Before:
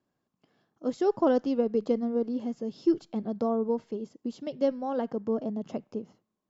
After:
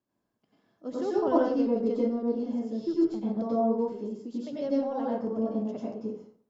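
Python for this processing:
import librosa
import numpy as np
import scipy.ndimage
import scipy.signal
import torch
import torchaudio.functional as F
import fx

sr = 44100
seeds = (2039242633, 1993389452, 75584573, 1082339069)

y = fx.rev_plate(x, sr, seeds[0], rt60_s=0.53, hf_ratio=0.65, predelay_ms=80, drr_db=-6.0)
y = y * librosa.db_to_amplitude(-7.5)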